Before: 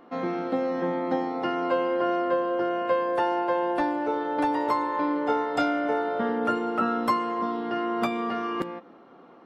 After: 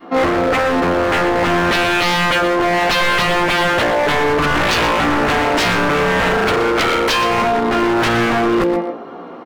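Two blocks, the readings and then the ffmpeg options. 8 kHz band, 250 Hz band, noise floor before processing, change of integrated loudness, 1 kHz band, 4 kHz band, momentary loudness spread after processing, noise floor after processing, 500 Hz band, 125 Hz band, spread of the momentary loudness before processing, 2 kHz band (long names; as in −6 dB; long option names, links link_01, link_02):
can't be measured, +9.0 dB, −51 dBFS, +11.5 dB, +10.0 dB, +22.0 dB, 1 LU, −32 dBFS, +10.0 dB, +20.5 dB, 4 LU, +19.5 dB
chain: -filter_complex "[0:a]adynamicequalizer=threshold=0.0112:dfrequency=530:dqfactor=0.87:tfrequency=530:tqfactor=0.87:attack=5:release=100:ratio=0.375:range=4:mode=boostabove:tftype=bell,flanger=delay=15:depth=2.5:speed=0.29,aeval=exprs='0.0562*(abs(mod(val(0)/0.0562+3,4)-2)-1)':channel_layout=same,asplit=2[link_01][link_02];[link_02]aecho=0:1:121:0.316[link_03];[link_01][link_03]amix=inputs=2:normalize=0,alimiter=level_in=27.5dB:limit=-1dB:release=50:level=0:latency=1,volume=-8dB"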